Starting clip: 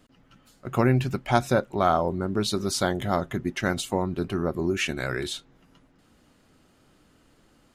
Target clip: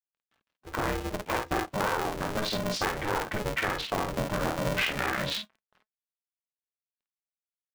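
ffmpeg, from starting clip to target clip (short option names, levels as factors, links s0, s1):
-filter_complex "[0:a]asplit=2[s0][s1];[s1]adelay=15,volume=0.282[s2];[s0][s2]amix=inputs=2:normalize=0,acrusher=bits=7:mix=0:aa=0.000001,dynaudnorm=f=270:g=11:m=3.76,afwtdn=0.0355,lowpass=2700,lowshelf=f=400:g=-5,asplit=2[s3][s4];[s4]alimiter=limit=0.188:level=0:latency=1,volume=0.891[s5];[s3][s5]amix=inputs=2:normalize=0,equalizer=f=200:t=o:w=1.9:g=-9,acompressor=threshold=0.0794:ratio=6,flanger=delay=1.3:depth=3.4:regen=75:speed=0.44:shape=sinusoidal,asplit=2[s6][s7];[s7]aecho=0:1:23|51:0.335|0.668[s8];[s6][s8]amix=inputs=2:normalize=0,aeval=exprs='val(0)*sgn(sin(2*PI*210*n/s))':c=same"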